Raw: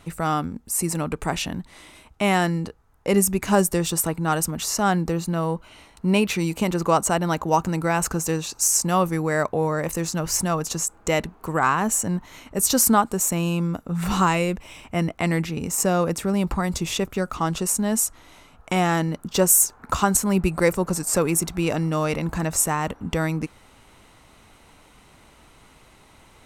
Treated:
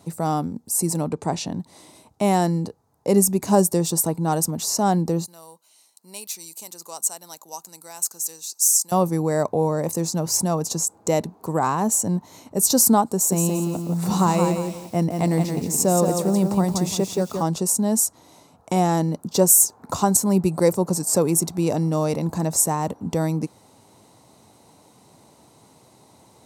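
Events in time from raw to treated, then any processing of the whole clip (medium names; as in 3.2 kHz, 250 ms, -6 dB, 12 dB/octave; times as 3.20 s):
1.07–1.60 s: low-pass 7 kHz
5.26–8.92 s: differentiator
13.13–17.48 s: bit-crushed delay 173 ms, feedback 35%, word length 7-bit, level -5 dB
whole clip: high-pass 100 Hz 24 dB/octave; high-order bell 2 kHz -12 dB; trim +2 dB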